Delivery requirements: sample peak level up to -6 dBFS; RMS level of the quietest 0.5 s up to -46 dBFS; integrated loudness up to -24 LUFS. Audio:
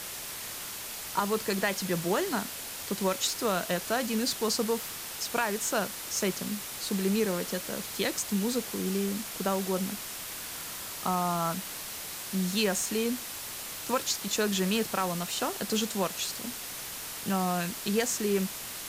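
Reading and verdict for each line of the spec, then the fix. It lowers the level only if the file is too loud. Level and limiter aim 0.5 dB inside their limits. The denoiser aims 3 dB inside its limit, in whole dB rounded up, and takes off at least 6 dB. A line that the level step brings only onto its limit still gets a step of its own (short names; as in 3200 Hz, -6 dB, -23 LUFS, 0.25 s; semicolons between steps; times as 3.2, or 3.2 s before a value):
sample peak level -14.0 dBFS: OK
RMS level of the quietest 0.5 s -39 dBFS: fail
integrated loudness -30.5 LUFS: OK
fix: denoiser 10 dB, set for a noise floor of -39 dBFS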